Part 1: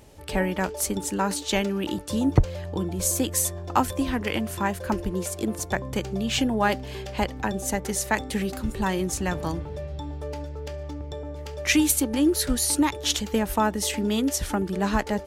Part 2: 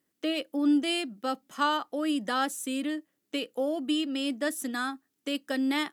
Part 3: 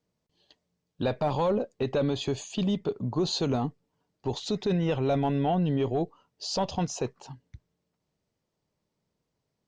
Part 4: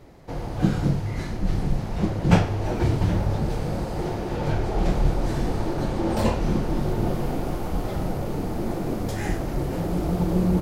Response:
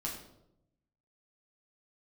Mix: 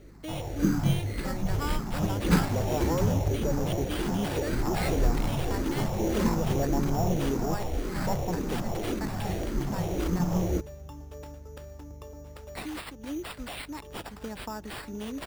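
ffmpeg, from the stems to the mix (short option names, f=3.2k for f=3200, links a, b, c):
-filter_complex "[0:a]highshelf=f=5.7k:t=q:w=3:g=8,acompressor=threshold=-25dB:ratio=2,alimiter=limit=-15dB:level=0:latency=1:release=179,adelay=900,volume=-10dB[a];[1:a]volume=-9.5dB[b];[2:a]afwtdn=0.0126,adelay=1500,volume=-5dB[c];[3:a]asplit=2[d][e];[e]afreqshift=-1.8[f];[d][f]amix=inputs=2:normalize=1,volume=-1.5dB[g];[a][b][c][g]amix=inputs=4:normalize=0,acrossover=split=7200[h][i];[i]acompressor=threshold=-39dB:ratio=4:attack=1:release=60[j];[h][j]amix=inputs=2:normalize=0,acrusher=samples=7:mix=1:aa=0.000001,aeval=exprs='val(0)+0.00316*(sin(2*PI*50*n/s)+sin(2*PI*2*50*n/s)/2+sin(2*PI*3*50*n/s)/3+sin(2*PI*4*50*n/s)/4+sin(2*PI*5*50*n/s)/5)':c=same"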